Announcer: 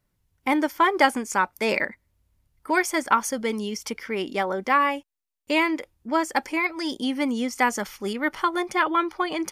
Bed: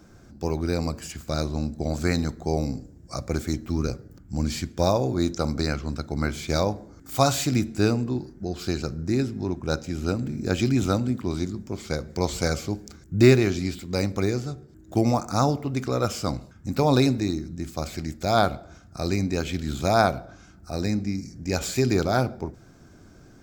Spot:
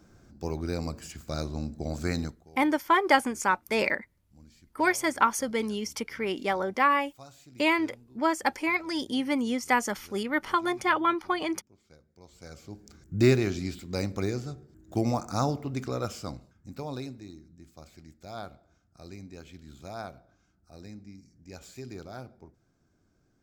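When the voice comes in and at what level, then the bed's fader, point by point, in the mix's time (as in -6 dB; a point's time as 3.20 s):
2.10 s, -2.5 dB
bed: 2.25 s -6 dB
2.49 s -29 dB
12.23 s -29 dB
13.01 s -5.5 dB
15.83 s -5.5 dB
17.17 s -19.5 dB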